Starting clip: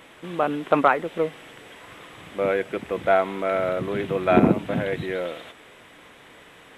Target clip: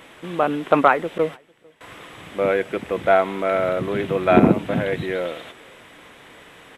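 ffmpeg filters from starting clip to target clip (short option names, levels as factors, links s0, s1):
-filter_complex "[0:a]asettb=1/sr,asplit=3[s0][s1][s2];[s0]atrim=end=1.184[s3];[s1]atrim=start=1.18:end=1.81,asetpts=PTS-STARTPTS,afade=t=in:d=0.004:c=qsin,afade=t=out:st=0.626:d=0.004:c=qsin,agate=range=0.112:threshold=0.0251:ratio=16:detection=peak[s4];[s2]atrim=start=1.806[s5];[s3][s4]acrossfade=d=0.004:c1=hsin:c2=qsin[s6];[s6][s5]acrossfade=d=0.004:c1=qsin:c2=hsin,asplit=2[s7][s8];[s8]adelay=449,volume=0.0316,highshelf=f=4000:g=-10.1[s9];[s7][s9]amix=inputs=2:normalize=0,volume=1.41"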